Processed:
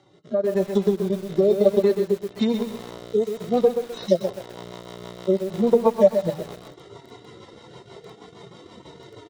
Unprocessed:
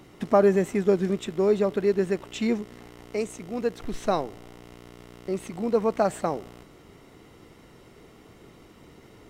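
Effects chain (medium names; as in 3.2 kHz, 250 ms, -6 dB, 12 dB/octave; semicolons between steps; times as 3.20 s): harmonic-percussive separation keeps harmonic; dynamic bell 4.1 kHz, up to +4 dB, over -52 dBFS, Q 0.82; compression 16:1, threshold -27 dBFS, peak gain reduction 13.5 dB; rotary cabinet horn 1 Hz, later 6.3 Hz, at 2.94 s; level rider gain up to 13.5 dB; cabinet simulation 110–8100 Hz, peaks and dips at 280 Hz -5 dB, 580 Hz +9 dB, 930 Hz +9 dB, 2.5 kHz -7 dB, 3.7 kHz +10 dB; on a send: feedback delay 94 ms, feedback 51%, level -15 dB; on the sum: transient shaper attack +2 dB, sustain -10 dB; de-hum 156.2 Hz, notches 2; bit-crushed delay 128 ms, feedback 35%, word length 6-bit, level -7.5 dB; trim -2 dB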